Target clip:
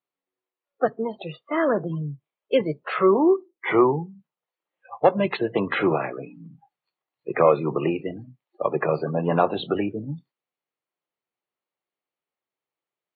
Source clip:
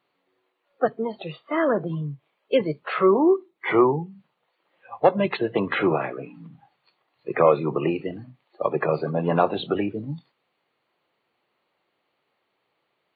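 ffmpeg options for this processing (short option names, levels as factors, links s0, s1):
-af "afftdn=nr=19:nf=-44"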